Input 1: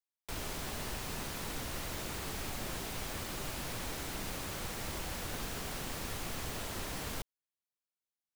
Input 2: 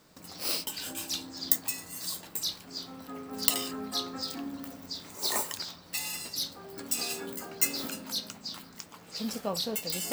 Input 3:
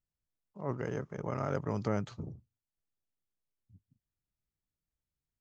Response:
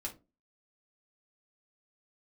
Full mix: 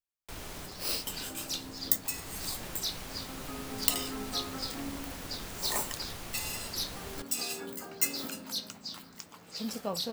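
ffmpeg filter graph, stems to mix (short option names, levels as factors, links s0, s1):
-filter_complex "[0:a]volume=0.708[s0];[1:a]adelay=400,volume=0.794[s1];[2:a]volume=0.106,asplit=2[s2][s3];[s3]apad=whole_len=372936[s4];[s0][s4]sidechaincompress=threshold=0.00178:ratio=8:attack=22:release=327[s5];[s5][s1][s2]amix=inputs=3:normalize=0"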